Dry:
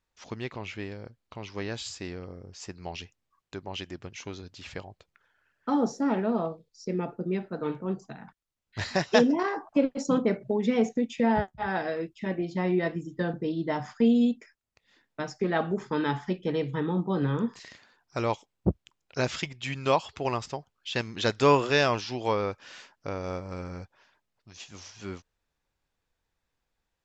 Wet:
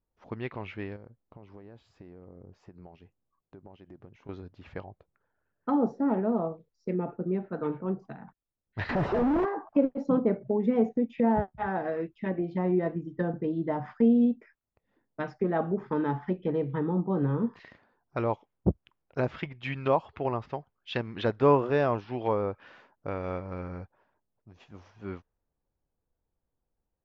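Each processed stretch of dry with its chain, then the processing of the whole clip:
0.96–4.29 bell 82 Hz -5.5 dB 0.42 oct + compressor 16:1, threshold -43 dBFS
8.89–9.45 infinite clipping + high shelf 2100 Hz -9 dB
whole clip: treble ducked by the level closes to 1000 Hz, closed at -25.5 dBFS; high shelf 3300 Hz +7.5 dB; low-pass opened by the level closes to 650 Hz, open at -22.5 dBFS

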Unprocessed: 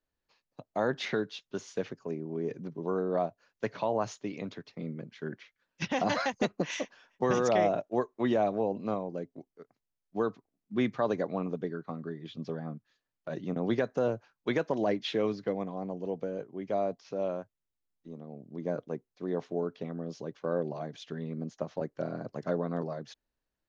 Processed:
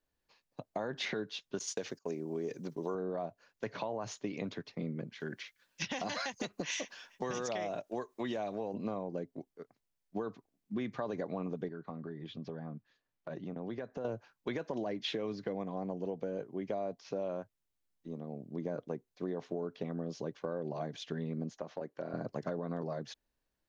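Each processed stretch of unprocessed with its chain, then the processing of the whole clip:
1.59–2.95 gate -52 dBFS, range -22 dB + tone controls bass -6 dB, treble +14 dB
5.2–8.74 high shelf 2200 Hz +11.5 dB + compressor 1.5:1, threshold -45 dBFS
11.68–14.05 LPF 3400 Hz 6 dB/oct + compressor 3:1, threshold -42 dBFS
21.58–22.14 HPF 300 Hz 6 dB/oct + compressor 2:1, threshold -40 dBFS + high shelf 4500 Hz -6.5 dB
whole clip: limiter -23.5 dBFS; notch 1300 Hz, Q 20; compressor, threshold -35 dBFS; gain +2 dB

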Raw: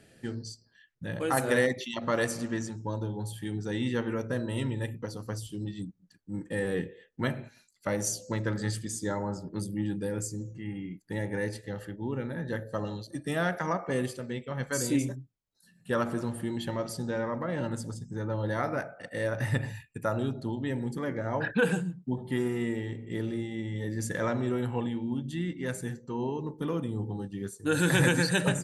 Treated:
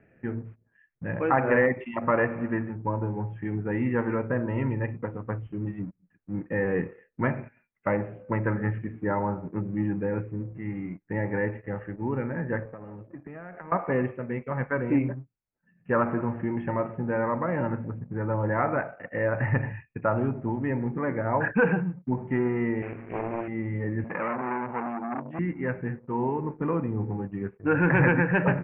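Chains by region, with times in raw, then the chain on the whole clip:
12.65–13.72 HPF 77 Hz + high shelf 3500 Hz -12 dB + compressor 12:1, threshold -40 dBFS
22.82–23.48 HPF 200 Hz 6 dB/oct + companded quantiser 4-bit + Doppler distortion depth 0.97 ms
24.04–25.39 HPF 160 Hz 24 dB/oct + core saturation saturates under 1900 Hz
whole clip: sample leveller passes 1; steep low-pass 2500 Hz 72 dB/oct; dynamic EQ 960 Hz, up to +5 dB, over -44 dBFS, Q 2

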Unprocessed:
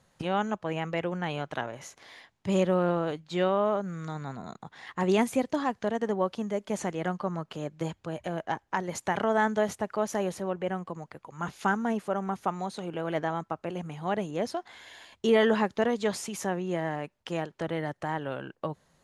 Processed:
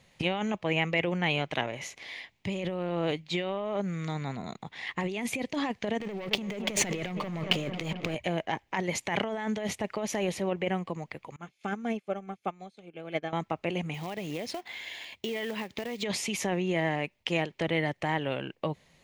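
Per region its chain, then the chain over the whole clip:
6–8.15 sample leveller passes 3 + darkening echo 0.222 s, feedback 72%, low-pass 3700 Hz, level -18.5 dB
11.36–13.33 notch comb 960 Hz + upward expander 2.5:1, over -43 dBFS
13.94–16.03 HPF 83 Hz 6 dB/oct + compressor 12:1, threshold -33 dBFS + short-mantissa float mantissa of 2-bit
whole clip: bell 10000 Hz -8.5 dB 1.9 oct; negative-ratio compressor -30 dBFS, ratio -1; resonant high shelf 1800 Hz +6 dB, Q 3

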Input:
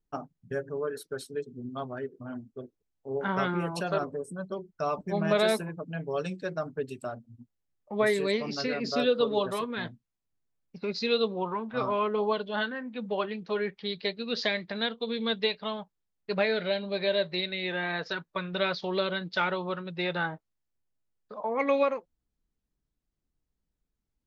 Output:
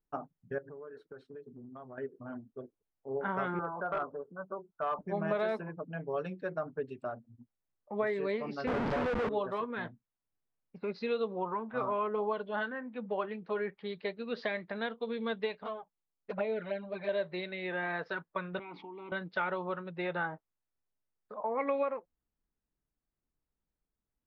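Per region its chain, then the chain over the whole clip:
0.58–1.98 compressor 10:1, threshold -40 dBFS + high shelf 4300 Hz -11 dB
3.59–4.99 steep low-pass 1500 Hz 72 dB/oct + tilt shelf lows -8 dB, about 730 Hz + hard clip -25 dBFS
8.67–9.29 low shelf 160 Hz +7.5 dB + Schmitt trigger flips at -32 dBFS
15.63–17.09 running mean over 6 samples + envelope flanger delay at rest 8 ms, full sweep at -23 dBFS
18.59–19.12 vowel filter u + bell 4200 Hz -6 dB 0.62 oct + fast leveller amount 100%
whole clip: LPF 1700 Hz 12 dB/oct; low shelf 360 Hz -7 dB; compressor 3:1, threshold -29 dBFS

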